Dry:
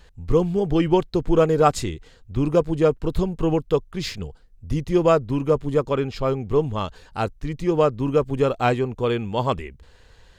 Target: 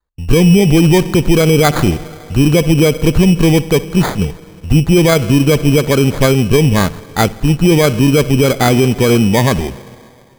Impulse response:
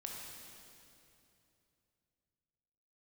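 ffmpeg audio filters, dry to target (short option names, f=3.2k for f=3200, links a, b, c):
-filter_complex "[0:a]agate=range=-38dB:threshold=-40dB:ratio=16:detection=peak,asplit=2[a][b];[b]aemphasis=mode=production:type=75fm[c];[1:a]atrim=start_sample=2205,lowpass=5.3k,adelay=60[d];[c][d]afir=irnorm=-1:irlink=0,volume=-18.5dB[e];[a][e]amix=inputs=2:normalize=0,adynamicequalizer=threshold=0.0178:dfrequency=190:dqfactor=0.9:tfrequency=190:tqfactor=0.9:attack=5:release=100:ratio=0.375:range=4:mode=boostabove:tftype=bell,acrusher=samples=16:mix=1:aa=0.000001,alimiter=level_in=13dB:limit=-1dB:release=50:level=0:latency=1,volume=-1dB"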